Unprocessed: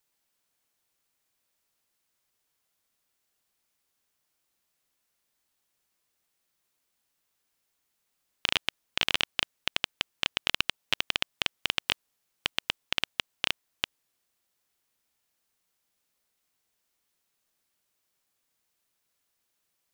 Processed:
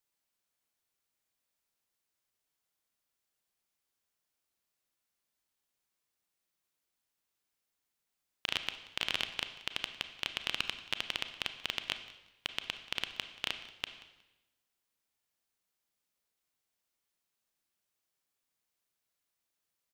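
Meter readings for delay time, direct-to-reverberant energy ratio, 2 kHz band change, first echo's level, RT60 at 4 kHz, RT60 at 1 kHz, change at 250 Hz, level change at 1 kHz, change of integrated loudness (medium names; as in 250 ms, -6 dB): 182 ms, 8.5 dB, -7.0 dB, -20.5 dB, 0.95 s, 0.95 s, -7.0 dB, -7.0 dB, -7.0 dB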